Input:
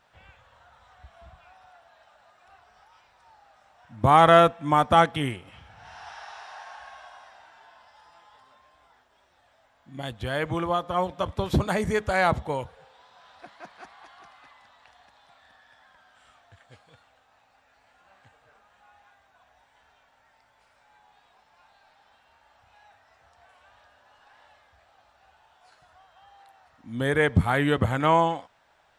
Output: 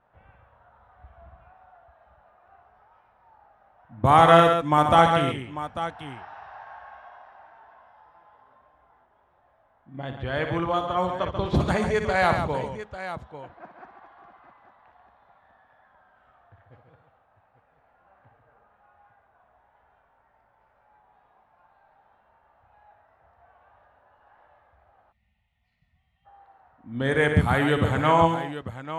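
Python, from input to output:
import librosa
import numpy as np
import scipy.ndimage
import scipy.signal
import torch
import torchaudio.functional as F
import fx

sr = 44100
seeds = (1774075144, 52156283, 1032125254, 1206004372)

y = fx.env_lowpass(x, sr, base_hz=1200.0, full_db=-18.0)
y = fx.echo_multitap(y, sr, ms=(60, 139, 845), db=(-8.5, -7.5, -12.0))
y = fx.spec_box(y, sr, start_s=25.12, length_s=1.14, low_hz=250.0, high_hz=1800.0, gain_db=-26)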